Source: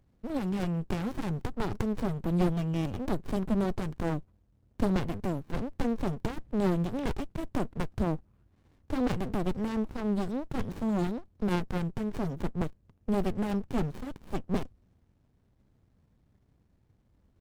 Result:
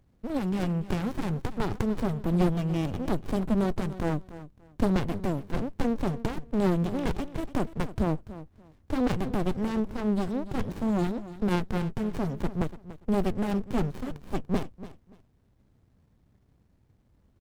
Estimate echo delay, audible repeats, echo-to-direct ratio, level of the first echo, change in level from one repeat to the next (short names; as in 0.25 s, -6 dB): 0.289 s, 2, -15.0 dB, -15.0 dB, -13.5 dB